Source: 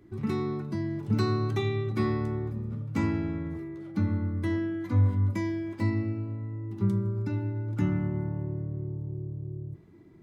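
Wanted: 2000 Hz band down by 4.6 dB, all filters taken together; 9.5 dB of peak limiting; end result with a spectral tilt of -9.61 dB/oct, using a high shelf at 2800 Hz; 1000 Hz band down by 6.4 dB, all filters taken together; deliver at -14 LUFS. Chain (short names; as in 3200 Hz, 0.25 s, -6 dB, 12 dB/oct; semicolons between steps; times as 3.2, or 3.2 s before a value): bell 1000 Hz -7 dB; bell 2000 Hz -4.5 dB; high shelf 2800 Hz +3 dB; gain +19.5 dB; limiter -4.5 dBFS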